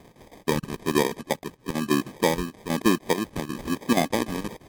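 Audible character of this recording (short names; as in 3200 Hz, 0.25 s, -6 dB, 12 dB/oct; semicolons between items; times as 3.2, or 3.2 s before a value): phasing stages 6, 1.1 Hz, lowest notch 500–2700 Hz; chopped level 6.3 Hz, depth 65%, duty 75%; aliases and images of a low sample rate 1400 Hz, jitter 0%; MP3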